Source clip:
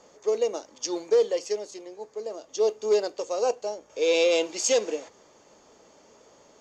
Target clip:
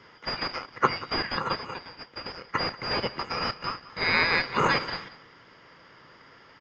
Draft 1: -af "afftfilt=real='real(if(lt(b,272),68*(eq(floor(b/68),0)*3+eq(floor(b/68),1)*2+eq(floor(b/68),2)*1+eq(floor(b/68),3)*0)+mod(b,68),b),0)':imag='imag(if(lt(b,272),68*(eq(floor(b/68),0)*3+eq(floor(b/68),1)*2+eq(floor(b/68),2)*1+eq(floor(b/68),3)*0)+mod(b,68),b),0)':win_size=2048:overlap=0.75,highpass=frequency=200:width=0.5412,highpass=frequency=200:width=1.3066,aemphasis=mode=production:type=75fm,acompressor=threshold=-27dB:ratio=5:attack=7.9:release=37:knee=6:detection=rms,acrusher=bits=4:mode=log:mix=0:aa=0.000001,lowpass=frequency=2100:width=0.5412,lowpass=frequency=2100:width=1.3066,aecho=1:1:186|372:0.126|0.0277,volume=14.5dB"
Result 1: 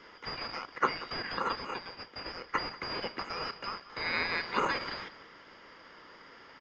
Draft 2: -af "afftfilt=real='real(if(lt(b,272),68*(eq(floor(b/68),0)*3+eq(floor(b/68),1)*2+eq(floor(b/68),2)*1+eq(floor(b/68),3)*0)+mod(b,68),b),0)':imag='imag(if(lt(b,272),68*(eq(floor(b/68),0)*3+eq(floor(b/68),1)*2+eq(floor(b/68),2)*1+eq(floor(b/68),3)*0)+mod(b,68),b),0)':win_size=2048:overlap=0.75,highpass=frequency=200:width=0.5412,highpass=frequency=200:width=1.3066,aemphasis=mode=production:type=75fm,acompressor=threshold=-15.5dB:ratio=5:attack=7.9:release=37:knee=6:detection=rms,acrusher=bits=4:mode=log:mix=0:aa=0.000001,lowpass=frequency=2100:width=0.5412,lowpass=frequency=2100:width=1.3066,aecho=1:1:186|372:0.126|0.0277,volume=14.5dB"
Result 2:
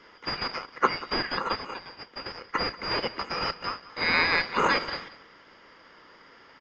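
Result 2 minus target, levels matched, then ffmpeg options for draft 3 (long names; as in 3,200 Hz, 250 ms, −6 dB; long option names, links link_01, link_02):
125 Hz band −5.0 dB
-af "afftfilt=real='real(if(lt(b,272),68*(eq(floor(b/68),0)*3+eq(floor(b/68),1)*2+eq(floor(b/68),2)*1+eq(floor(b/68),3)*0)+mod(b,68),b),0)':imag='imag(if(lt(b,272),68*(eq(floor(b/68),0)*3+eq(floor(b/68),1)*2+eq(floor(b/68),2)*1+eq(floor(b/68),3)*0)+mod(b,68),b),0)':win_size=2048:overlap=0.75,highpass=frequency=97:width=0.5412,highpass=frequency=97:width=1.3066,aemphasis=mode=production:type=75fm,acompressor=threshold=-15.5dB:ratio=5:attack=7.9:release=37:knee=6:detection=rms,acrusher=bits=4:mode=log:mix=0:aa=0.000001,lowpass=frequency=2100:width=0.5412,lowpass=frequency=2100:width=1.3066,aecho=1:1:186|372:0.126|0.0277,volume=14.5dB"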